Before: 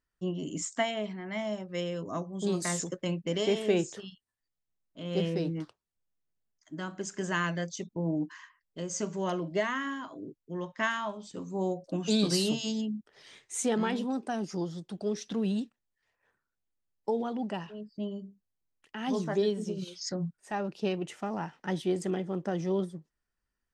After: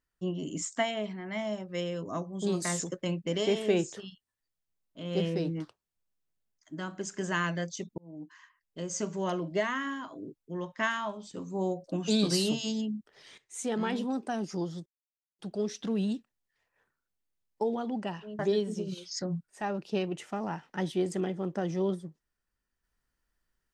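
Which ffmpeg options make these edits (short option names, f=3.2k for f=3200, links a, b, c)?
-filter_complex "[0:a]asplit=5[a][b][c][d][e];[a]atrim=end=7.98,asetpts=PTS-STARTPTS,afade=t=out:st=7.976:d=0.004:c=hsin[f];[b]atrim=start=7.98:end=13.38,asetpts=PTS-STARTPTS,afade=t=in:d=0.87,afade=t=out:st=5.396:d=0.004:c=hsin:silence=0.251189[g];[c]atrim=start=13.38:end=14.86,asetpts=PTS-STARTPTS,afade=t=in:d=0.59:silence=0.251189,afade=t=out:st=1.476:d=0.004:c=hsin,apad=pad_dur=0.53[h];[d]atrim=start=14.86:end=17.862,asetpts=PTS-STARTPTS,afade=t=in:d=0.004:c=hsin[i];[e]atrim=start=19.288[j];[f][g][h][i]concat=n=4:v=0:a=1[k];[k][j]acrossfade=d=0.004:c1=hsin:c2=hsin"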